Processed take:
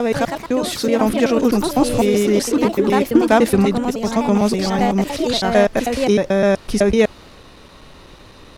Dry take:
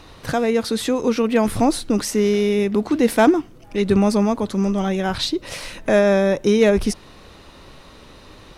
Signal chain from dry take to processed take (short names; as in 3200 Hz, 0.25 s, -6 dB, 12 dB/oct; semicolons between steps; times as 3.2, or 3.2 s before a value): slices in reverse order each 0.126 s, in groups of 4; echoes that change speed 0.142 s, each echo +3 st, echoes 2, each echo -6 dB; gain +1.5 dB